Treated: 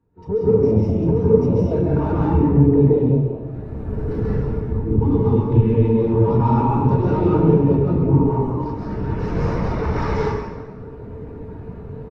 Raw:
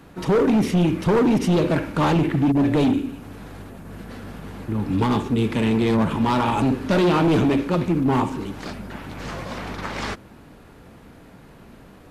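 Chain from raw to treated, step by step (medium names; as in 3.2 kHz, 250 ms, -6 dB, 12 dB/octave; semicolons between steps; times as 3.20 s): octave divider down 1 oct, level +2 dB; small resonant body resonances 440/920 Hz, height 13 dB, ringing for 100 ms; on a send: frequency-shifting echo 185 ms, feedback 37%, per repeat +110 Hz, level -15.5 dB; on the sum: level rider gain up to 15 dB; dynamic bell 5.5 kHz, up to +8 dB, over -53 dBFS, Q 4.3; compression, threshold -12 dBFS, peak gain reduction 7.5 dB; treble shelf 7.2 kHz -7 dB; band-stop 3.2 kHz, Q 19; plate-style reverb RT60 1.8 s, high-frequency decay 0.7×, pre-delay 120 ms, DRR -5.5 dB; spectral contrast expander 1.5:1; trim -5.5 dB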